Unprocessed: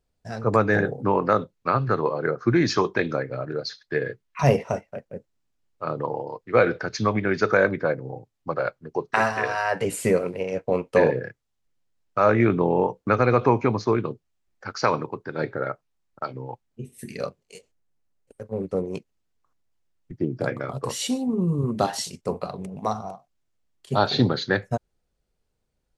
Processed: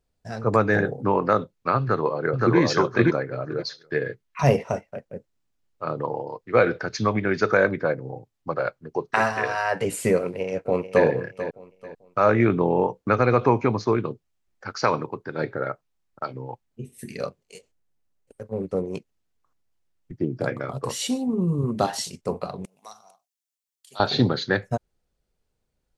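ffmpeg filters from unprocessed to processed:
-filter_complex "[0:a]asplit=2[a][b];[b]afade=t=in:st=1.81:d=0.01,afade=t=out:st=2.58:d=0.01,aecho=0:1:520|1040|1560:1|0.15|0.0225[c];[a][c]amix=inputs=2:normalize=0,asplit=2[d][e];[e]afade=t=in:st=10.21:d=0.01,afade=t=out:st=11.06:d=0.01,aecho=0:1:440|880|1320:0.251189|0.0753566|0.022607[f];[d][f]amix=inputs=2:normalize=0,asettb=1/sr,asplit=3[g][h][i];[g]atrim=end=22.654[j];[h]atrim=start=22.65:end=24,asetpts=PTS-STARTPTS,afade=t=in:d=0.004:c=qsin,afade=t=out:st=1.346:d=0.004:c=qsin,aderivative[k];[i]atrim=start=23.996[l];[j][k]acrossfade=d=0.004:c1=hsin:c2=qsin[m];[m][l]acrossfade=d=0.004:c1=qsin:c2=hsin"

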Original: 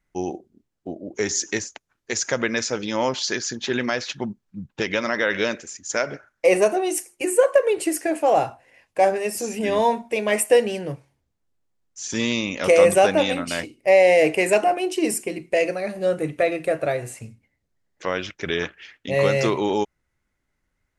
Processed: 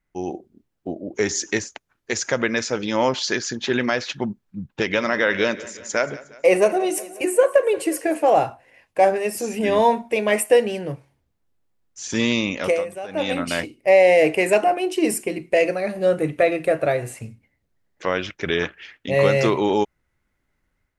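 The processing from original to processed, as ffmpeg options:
-filter_complex "[0:a]asettb=1/sr,asplit=3[a][b][c];[a]atrim=end=4.694[d];[b]atrim=start=4.69:end=8.3,asetpts=PTS-STARTPTS,afade=t=in:d=0.004:c=qsin,afade=t=out:st=3.606:d=0.004:c=qsin,aecho=1:1:180|360|540|720|900:0.119|0.0666|0.0373|0.0209|0.0117,atrim=end_sample=159201[e];[c]atrim=start=8.296[f];[d][e]acrossfade=d=0.004:c1=hsin:c2=qsin[g];[g][f]acrossfade=d=0.004:c1=qsin:c2=hsin,asplit=3[h][i][j];[h]atrim=end=12.85,asetpts=PTS-STARTPTS,afade=t=out:st=12.5:d=0.35:silence=0.1[k];[i]atrim=start=12.85:end=13.08,asetpts=PTS-STARTPTS,volume=-20dB[l];[j]atrim=start=13.08,asetpts=PTS-STARTPTS,afade=t=in:d=0.35:silence=0.1[m];[k][l][m]concat=n=3:v=0:a=1,equalizer=f=6.7k:w=0.93:g=-4.5,dynaudnorm=f=210:g=3:m=6dB,volume=-2.5dB"

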